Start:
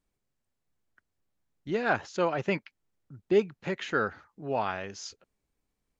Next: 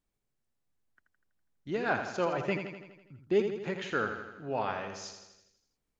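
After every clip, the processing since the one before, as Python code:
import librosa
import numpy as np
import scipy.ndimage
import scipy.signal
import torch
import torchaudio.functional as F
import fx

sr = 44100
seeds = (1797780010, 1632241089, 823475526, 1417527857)

y = fx.echo_feedback(x, sr, ms=82, feedback_pct=59, wet_db=-7.5)
y = y * librosa.db_to_amplitude(-3.5)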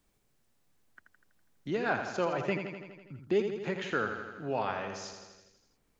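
y = fx.band_squash(x, sr, depth_pct=40)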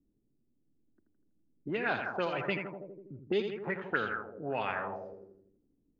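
y = fx.envelope_lowpass(x, sr, base_hz=290.0, top_hz=3800.0, q=3.3, full_db=-26.0, direction='up')
y = y * librosa.db_to_amplitude(-3.0)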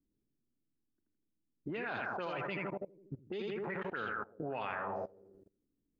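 y = fx.dynamic_eq(x, sr, hz=1100.0, q=1.6, threshold_db=-49.0, ratio=4.0, max_db=3)
y = fx.level_steps(y, sr, step_db=22)
y = y * librosa.db_to_amplitude(5.5)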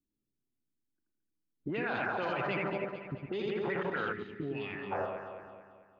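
y = fx.noise_reduce_blind(x, sr, reduce_db=10)
y = fx.echo_alternate(y, sr, ms=110, hz=940.0, feedback_pct=69, wet_db=-4.5)
y = fx.spec_box(y, sr, start_s=4.13, length_s=0.79, low_hz=440.0, high_hz=1700.0, gain_db=-17)
y = y * librosa.db_to_amplitude(4.0)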